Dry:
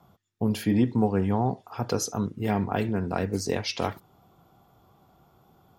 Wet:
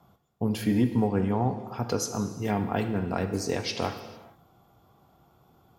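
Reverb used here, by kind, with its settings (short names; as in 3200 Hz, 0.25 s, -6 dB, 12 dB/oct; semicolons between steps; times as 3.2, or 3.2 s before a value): non-linear reverb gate 0.48 s falling, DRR 7.5 dB; gain -1.5 dB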